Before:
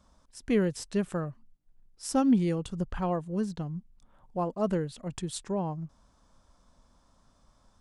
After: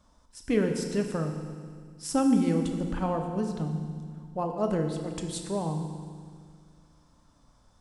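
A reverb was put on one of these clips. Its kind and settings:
feedback delay network reverb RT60 1.9 s, low-frequency decay 1.3×, high-frequency decay 1×, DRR 3.5 dB

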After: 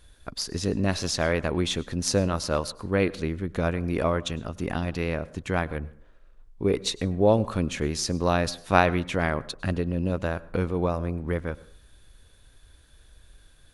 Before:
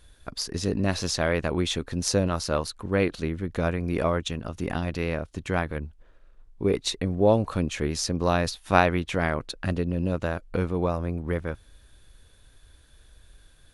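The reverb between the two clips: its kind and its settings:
dense smooth reverb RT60 0.51 s, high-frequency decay 0.6×, pre-delay 90 ms, DRR 20 dB

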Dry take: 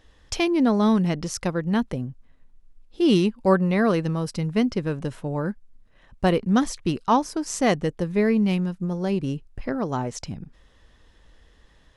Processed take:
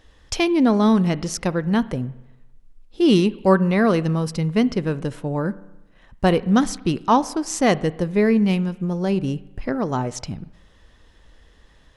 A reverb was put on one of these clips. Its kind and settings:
spring reverb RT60 1 s, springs 31/57 ms, chirp 50 ms, DRR 17.5 dB
level +3 dB

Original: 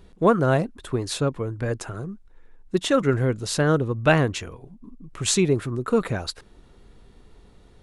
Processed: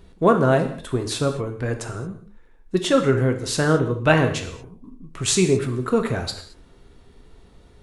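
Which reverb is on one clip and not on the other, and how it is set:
reverb whose tail is shaped and stops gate 250 ms falling, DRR 5 dB
level +1 dB

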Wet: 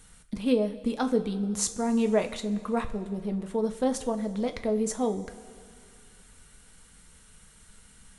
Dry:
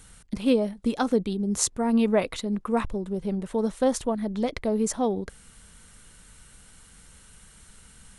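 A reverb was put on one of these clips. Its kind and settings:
coupled-rooms reverb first 0.27 s, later 2.5 s, from −16 dB, DRR 6 dB
level −4 dB

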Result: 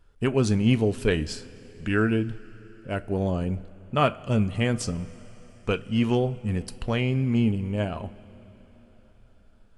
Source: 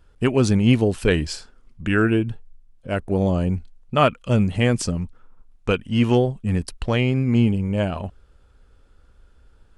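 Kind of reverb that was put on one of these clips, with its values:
coupled-rooms reverb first 0.23 s, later 4.4 s, from −19 dB, DRR 11.5 dB
level −5 dB

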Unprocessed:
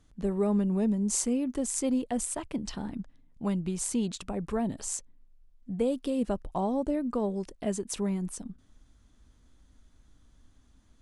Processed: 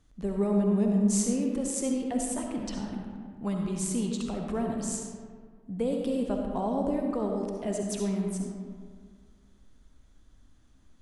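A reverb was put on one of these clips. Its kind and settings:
comb and all-pass reverb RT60 1.9 s, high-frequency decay 0.5×, pre-delay 25 ms, DRR 1 dB
level −2 dB

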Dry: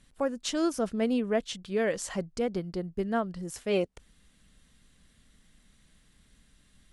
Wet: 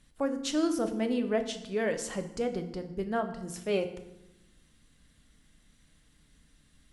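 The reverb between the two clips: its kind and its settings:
feedback delay network reverb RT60 0.9 s, low-frequency decay 1.55×, high-frequency decay 0.8×, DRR 6.5 dB
level −2 dB

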